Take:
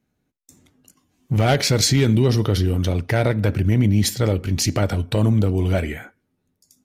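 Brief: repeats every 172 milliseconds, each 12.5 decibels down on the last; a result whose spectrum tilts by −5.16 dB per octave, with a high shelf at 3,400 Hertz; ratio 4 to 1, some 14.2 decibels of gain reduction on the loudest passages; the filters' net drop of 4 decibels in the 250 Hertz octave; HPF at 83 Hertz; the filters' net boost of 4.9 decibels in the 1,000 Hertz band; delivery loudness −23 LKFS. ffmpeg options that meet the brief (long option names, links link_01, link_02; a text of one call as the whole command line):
ffmpeg -i in.wav -af "highpass=83,equalizer=frequency=250:width_type=o:gain=-5.5,equalizer=frequency=1000:width_type=o:gain=8.5,highshelf=frequency=3400:gain=-4,acompressor=threshold=-28dB:ratio=4,aecho=1:1:172|344|516:0.237|0.0569|0.0137,volume=7.5dB" out.wav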